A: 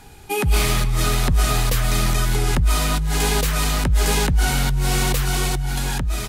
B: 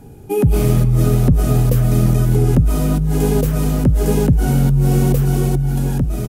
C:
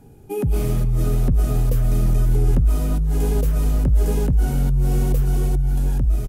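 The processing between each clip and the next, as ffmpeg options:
-af "equalizer=f=125:t=o:w=1:g=10,equalizer=f=250:t=o:w=1:g=8,equalizer=f=500:t=o:w=1:g=7,equalizer=f=1k:t=o:w=1:g=-6,equalizer=f=2k:t=o:w=1:g=-8,equalizer=f=4k:t=o:w=1:g=-11,equalizer=f=8k:t=o:w=1:g=-5,aecho=1:1:1127:0.0668"
-af "asubboost=boost=8:cutoff=67,volume=-7.5dB"

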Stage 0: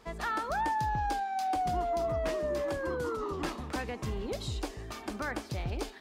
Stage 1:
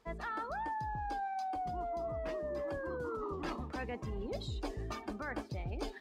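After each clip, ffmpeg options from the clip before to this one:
-af "afftdn=nr=12:nf=-44,areverse,acompressor=threshold=-40dB:ratio=16,areverse,volume=4.5dB"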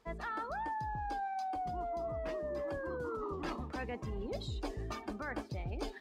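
-af anull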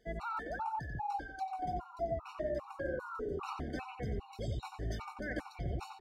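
-filter_complex "[0:a]asplit=2[a][b];[b]adelay=90,lowpass=f=3k:p=1,volume=-4dB,asplit=2[c][d];[d]adelay=90,lowpass=f=3k:p=1,volume=0.48,asplit=2[e][f];[f]adelay=90,lowpass=f=3k:p=1,volume=0.48,asplit=2[g][h];[h]adelay=90,lowpass=f=3k:p=1,volume=0.48,asplit=2[i][j];[j]adelay=90,lowpass=f=3k:p=1,volume=0.48,asplit=2[k][l];[l]adelay=90,lowpass=f=3k:p=1,volume=0.48[m];[a][c][e][g][i][k][m]amix=inputs=7:normalize=0,afftfilt=real='re*gt(sin(2*PI*2.5*pts/sr)*(1-2*mod(floor(b*sr/1024/740),2)),0)':imag='im*gt(sin(2*PI*2.5*pts/sr)*(1-2*mod(floor(b*sr/1024/740),2)),0)':win_size=1024:overlap=0.75,volume=1.5dB"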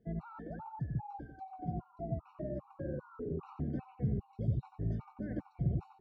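-af "bandpass=f=150:t=q:w=1.8:csg=0,volume=10.5dB"

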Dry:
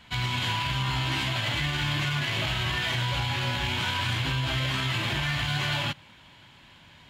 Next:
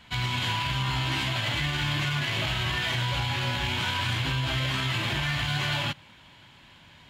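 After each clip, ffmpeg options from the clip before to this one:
-af anull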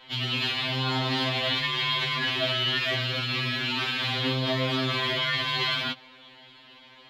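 -af "equalizer=f=125:t=o:w=1:g=-7,equalizer=f=250:t=o:w=1:g=5,equalizer=f=500:t=o:w=1:g=10,equalizer=f=1k:t=o:w=1:g=4,equalizer=f=2k:t=o:w=1:g=3,equalizer=f=4k:t=o:w=1:g=11,equalizer=f=8k:t=o:w=1:g=-8,afftfilt=real='re*2.45*eq(mod(b,6),0)':imag='im*2.45*eq(mod(b,6),0)':win_size=2048:overlap=0.75,volume=-2dB"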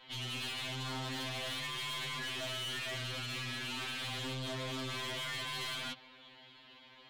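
-af "aeval=exprs='(tanh(35.5*val(0)+0.2)-tanh(0.2))/35.5':c=same,volume=-6dB"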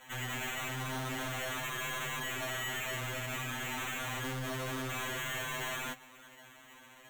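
-af "acrusher=samples=9:mix=1:aa=0.000001,volume=2dB"

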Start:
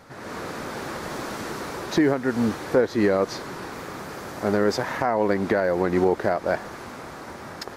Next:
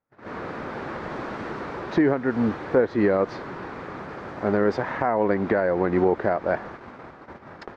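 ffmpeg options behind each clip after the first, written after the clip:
-af "lowpass=2.4k,agate=range=-35dB:threshold=-37dB:ratio=16:detection=peak"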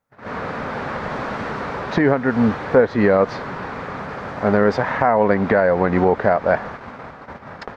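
-af "equalizer=f=340:t=o:w=0.35:g=-11,volume=7.5dB"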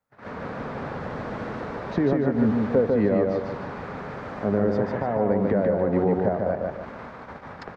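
-filter_complex "[0:a]acrossover=split=130|630[a][b][c];[c]acompressor=threshold=-34dB:ratio=6[d];[a][b][d]amix=inputs=3:normalize=0,aecho=1:1:148|296|444|592|740:0.708|0.262|0.0969|0.0359|0.0133,volume=-5dB"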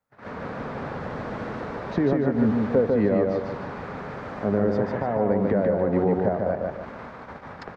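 -af anull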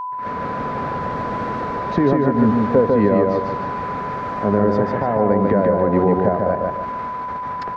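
-af "aeval=exprs='val(0)+0.0316*sin(2*PI*1000*n/s)':c=same,volume=5.5dB"

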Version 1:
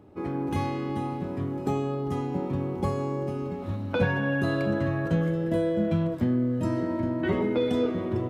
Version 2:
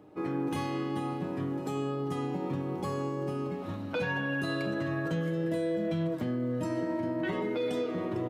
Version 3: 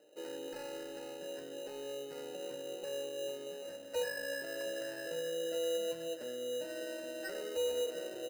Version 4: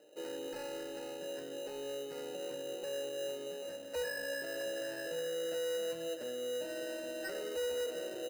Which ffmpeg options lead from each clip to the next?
-filter_complex "[0:a]highpass=f=230:p=1,aecho=1:1:6.5:0.41,acrossover=split=2600[a][b];[a]alimiter=limit=-24dB:level=0:latency=1:release=108[c];[c][b]amix=inputs=2:normalize=0"
-filter_complex "[0:a]asplit=2[a][b];[b]highpass=f=720:p=1,volume=11dB,asoftclip=type=tanh:threshold=-22dB[c];[a][c]amix=inputs=2:normalize=0,lowpass=f=2.2k:p=1,volume=-6dB,asplit=3[d][e][f];[d]bandpass=f=530:t=q:w=8,volume=0dB[g];[e]bandpass=f=1.84k:t=q:w=8,volume=-6dB[h];[f]bandpass=f=2.48k:t=q:w=8,volume=-9dB[i];[g][h][i]amix=inputs=3:normalize=0,acrusher=samples=13:mix=1:aa=0.000001,volume=1.5dB"
-af "asoftclip=type=tanh:threshold=-35dB,volume=2.5dB"

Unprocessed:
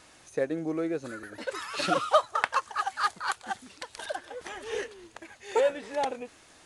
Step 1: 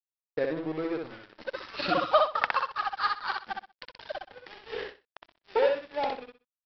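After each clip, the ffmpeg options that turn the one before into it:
-af "aresample=11025,aeval=exprs='sgn(val(0))*max(abs(val(0))-0.0112,0)':c=same,aresample=44100,aecho=1:1:63|126|189:0.668|0.147|0.0323"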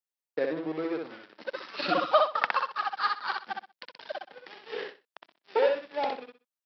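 -af "highpass=f=170:w=0.5412,highpass=f=170:w=1.3066"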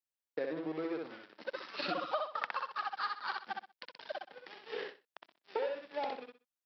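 -af "acompressor=threshold=-29dB:ratio=4,volume=-4dB"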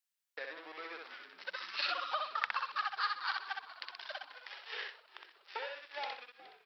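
-filter_complex "[0:a]highpass=1.3k,asplit=6[a][b][c][d][e][f];[b]adelay=419,afreqshift=-66,volume=-17.5dB[g];[c]adelay=838,afreqshift=-132,volume=-22.1dB[h];[d]adelay=1257,afreqshift=-198,volume=-26.7dB[i];[e]adelay=1676,afreqshift=-264,volume=-31.2dB[j];[f]adelay=2095,afreqshift=-330,volume=-35.8dB[k];[a][g][h][i][j][k]amix=inputs=6:normalize=0,volume=5dB"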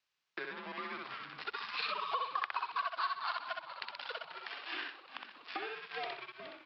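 -af "acompressor=threshold=-53dB:ratio=2,highpass=f=220:w=0.5412,highpass=f=220:w=1.3066,equalizer=f=260:t=q:w=4:g=5,equalizer=f=1.2k:t=q:w=4:g=5,equalizer=f=2.7k:t=q:w=4:g=3,lowpass=f=5.4k:w=0.5412,lowpass=f=5.4k:w=1.3066,afreqshift=-120,volume=8dB"

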